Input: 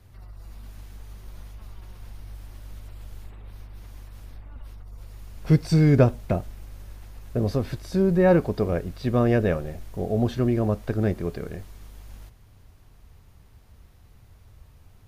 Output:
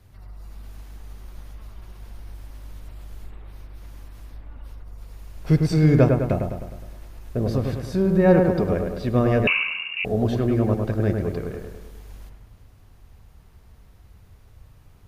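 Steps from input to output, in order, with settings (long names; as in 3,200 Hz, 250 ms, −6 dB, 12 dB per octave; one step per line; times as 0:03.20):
delay with a low-pass on its return 103 ms, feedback 55%, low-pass 2,200 Hz, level −4 dB
0:09.47–0:10.05: voice inversion scrambler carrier 2,800 Hz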